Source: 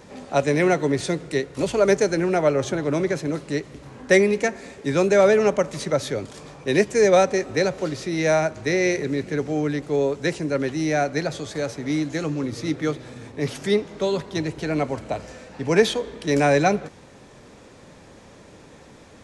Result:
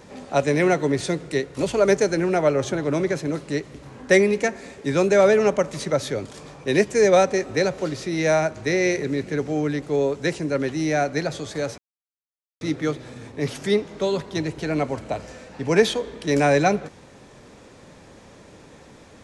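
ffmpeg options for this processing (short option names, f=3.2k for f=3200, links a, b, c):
-filter_complex "[0:a]asplit=3[a][b][c];[a]atrim=end=11.78,asetpts=PTS-STARTPTS,afade=t=out:st=11.776:d=0.004:c=hsin[d];[b]atrim=start=11.78:end=12.61,asetpts=PTS-STARTPTS,volume=0[e];[c]atrim=start=12.61,asetpts=PTS-STARTPTS,afade=t=in:d=0.004:c=hsin[f];[d][e][f]concat=n=3:v=0:a=1"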